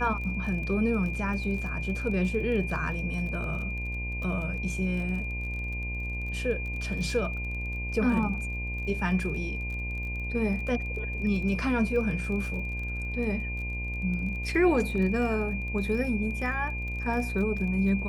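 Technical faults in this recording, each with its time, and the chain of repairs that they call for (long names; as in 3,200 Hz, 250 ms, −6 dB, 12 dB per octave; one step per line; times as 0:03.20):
mains buzz 60 Hz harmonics 18 −34 dBFS
surface crackle 27 per second −36 dBFS
whistle 2,400 Hz −35 dBFS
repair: click removal
notch filter 2,400 Hz, Q 30
hum removal 60 Hz, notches 18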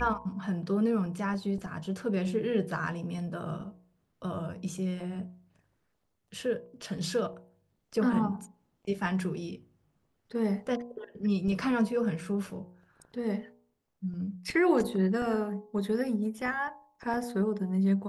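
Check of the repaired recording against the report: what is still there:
none of them is left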